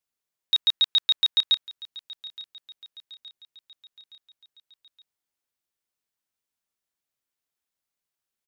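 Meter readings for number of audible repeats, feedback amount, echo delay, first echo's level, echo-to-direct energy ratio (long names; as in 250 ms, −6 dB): 3, 54%, 869 ms, −19.0 dB, −17.5 dB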